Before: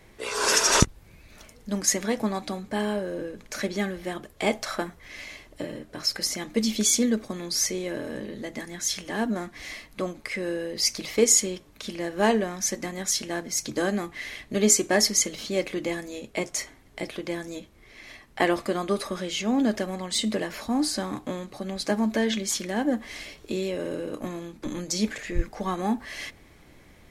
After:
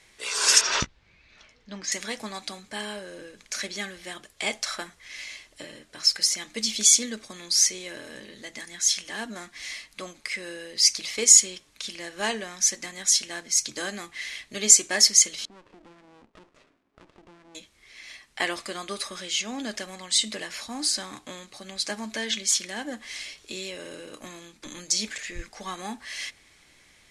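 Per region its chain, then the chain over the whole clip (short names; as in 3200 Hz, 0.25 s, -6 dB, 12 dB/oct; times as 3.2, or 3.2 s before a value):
0.61–1.92 air absorption 210 m + doubler 16 ms -11 dB
15.45–17.55 Chebyshev band-pass 240–880 Hz + compressor 4:1, threshold -38 dBFS + running maximum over 33 samples
whole clip: LPF 10000 Hz 24 dB/oct; tilt shelf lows -9.5 dB, about 1300 Hz; gain -3 dB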